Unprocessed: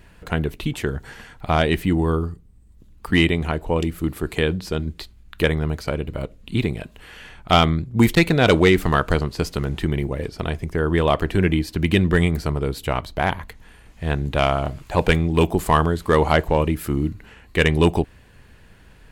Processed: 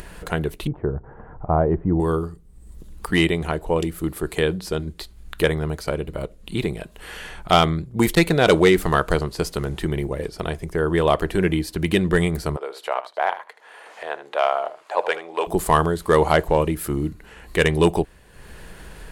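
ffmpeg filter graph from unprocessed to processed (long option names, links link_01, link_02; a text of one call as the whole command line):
ffmpeg -i in.wav -filter_complex "[0:a]asettb=1/sr,asplit=3[link_01][link_02][link_03];[link_01]atrim=end=0.674[link_04];[link_02]atrim=start=0.67:end=2,asetpts=PTS-STARTPTS,afade=type=in:duration=0.004:curve=qsin,afade=type=out:start_time=1.326:duration=0.004:curve=qsin,lowpass=frequency=1100:width=0.5412,lowpass=frequency=1100:width=1.3066,equalizer=frequency=100:width_type=o:width=0.69:gain=9.5[link_05];[link_03]atrim=start=1.996[link_06];[link_04][link_05]acrossfade=duration=0.004:curve1=hsin:curve2=qsin[link_07];[link_07][link_06]acrossfade=duration=0.004:curve1=qsin:curve2=hsin,asettb=1/sr,asplit=3[link_08][link_09][link_10];[link_08]atrim=end=12.564[link_11];[link_09]atrim=start=12.56:end=15.47,asetpts=PTS-STARTPTS,afade=type=in:duration=0.004:curve=qsin,afade=type=out:start_time=2.906:duration=0.004:curve=qsin,highpass=frequency=580:width=0.5412,highpass=frequency=580:width=1.3066,aemphasis=mode=reproduction:type=riaa,aecho=1:1:77:0.2,atrim=end_sample=128331[link_12];[link_10]atrim=start=15.466[link_13];[link_11][link_12]acrossfade=duration=0.004:curve1=hsin:curve2=qsin[link_14];[link_14][link_13]acrossfade=duration=0.004:curve1=qsin:curve2=hsin,equalizer=frequency=270:width=0.73:gain=5,acompressor=mode=upward:threshold=-26dB:ratio=2.5,equalizer=frequency=100:width_type=o:width=0.67:gain=-11,equalizer=frequency=250:width_type=o:width=0.67:gain=-10,equalizer=frequency=2500:width_type=o:width=0.67:gain=-3,equalizer=frequency=10000:width_type=o:width=0.67:gain=6" out.wav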